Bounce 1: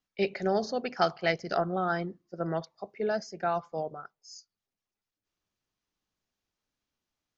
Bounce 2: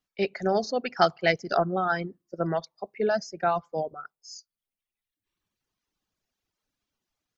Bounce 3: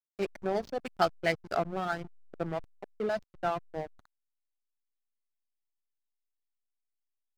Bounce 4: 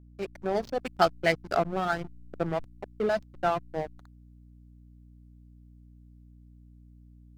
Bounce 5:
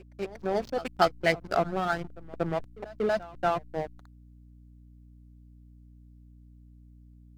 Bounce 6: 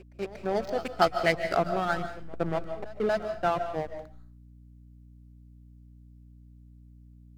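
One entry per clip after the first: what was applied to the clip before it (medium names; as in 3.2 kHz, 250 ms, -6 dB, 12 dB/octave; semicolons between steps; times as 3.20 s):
reverb removal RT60 1.4 s; level rider gain up to 4 dB; trim +1 dB
hysteresis with a dead band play -25 dBFS; trim -5 dB
level rider gain up to 8 dB; hum 60 Hz, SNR 20 dB; trim -3.5 dB
pre-echo 236 ms -19 dB
reverberation RT60 0.40 s, pre-delay 105 ms, DRR 9 dB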